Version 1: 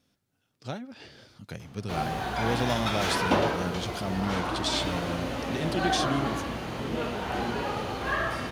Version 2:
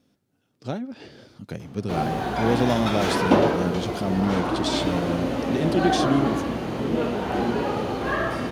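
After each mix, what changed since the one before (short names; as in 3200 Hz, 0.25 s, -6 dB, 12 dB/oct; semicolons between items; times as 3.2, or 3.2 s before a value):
master: add bell 300 Hz +9 dB 2.6 oct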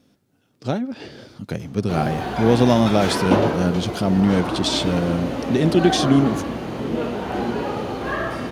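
speech +6.5 dB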